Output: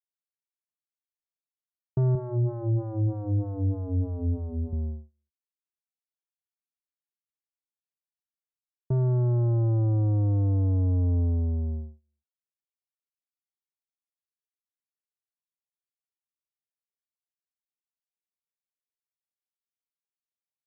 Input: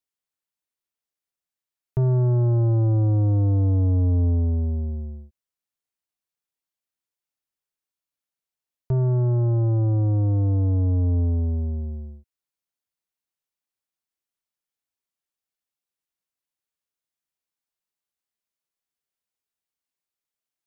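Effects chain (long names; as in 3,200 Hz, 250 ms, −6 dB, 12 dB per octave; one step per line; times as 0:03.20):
noise gate −29 dBFS, range −37 dB
0:02.15–0:04.73: phaser with staggered stages 3.2 Hz
level −3 dB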